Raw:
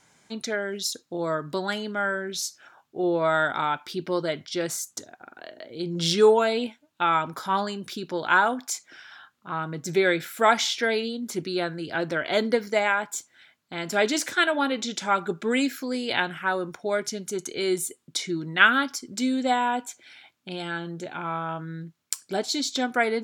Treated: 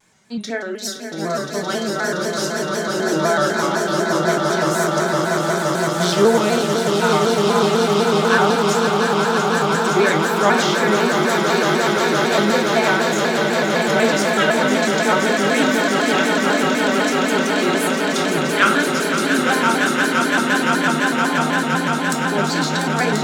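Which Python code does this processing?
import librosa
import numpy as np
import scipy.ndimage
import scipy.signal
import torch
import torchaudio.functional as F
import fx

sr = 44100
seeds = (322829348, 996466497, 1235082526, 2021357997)

y = fx.echo_swell(x, sr, ms=172, loudest=8, wet_db=-6)
y = fx.room_shoebox(y, sr, seeds[0], volume_m3=260.0, walls='furnished', distance_m=1.3)
y = fx.vibrato_shape(y, sr, shape='square', rate_hz=4.0, depth_cents=100.0)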